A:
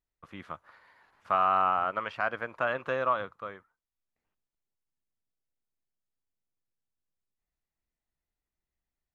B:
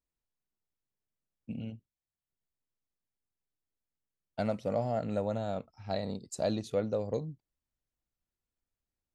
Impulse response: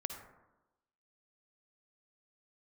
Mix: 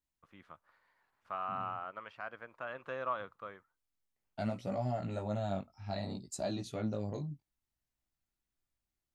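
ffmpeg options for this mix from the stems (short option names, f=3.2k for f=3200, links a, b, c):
-filter_complex "[0:a]volume=-6.5dB,afade=t=in:st=2.64:d=0.73:silence=0.446684,asplit=2[a][b];[1:a]equalizer=f=480:t=o:w=0.28:g=-13,alimiter=level_in=2dB:limit=-24dB:level=0:latency=1:release=82,volume=-2dB,flanger=delay=15.5:depth=5.2:speed=0.62,volume=2.5dB[c];[b]apad=whole_len=403210[d];[c][d]sidechaincompress=threshold=-45dB:ratio=8:attack=16:release=107[e];[a][e]amix=inputs=2:normalize=0"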